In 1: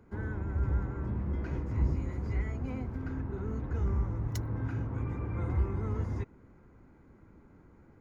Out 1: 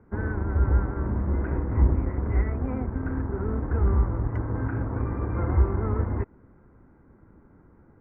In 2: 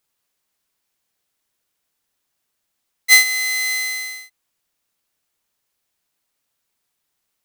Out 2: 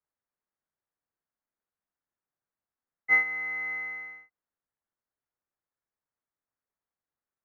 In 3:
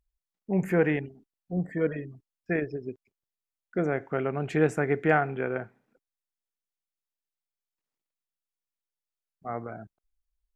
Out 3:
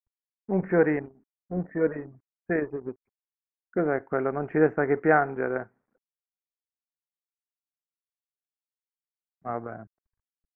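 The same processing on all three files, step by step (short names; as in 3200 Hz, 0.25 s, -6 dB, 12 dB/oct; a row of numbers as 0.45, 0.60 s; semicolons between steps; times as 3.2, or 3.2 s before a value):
G.711 law mismatch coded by A; inverse Chebyshev low-pass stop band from 3600 Hz, stop band 40 dB; dynamic EQ 140 Hz, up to -7 dB, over -45 dBFS, Q 1.4; match loudness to -27 LUFS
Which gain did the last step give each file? +11.0, -3.0, +4.0 dB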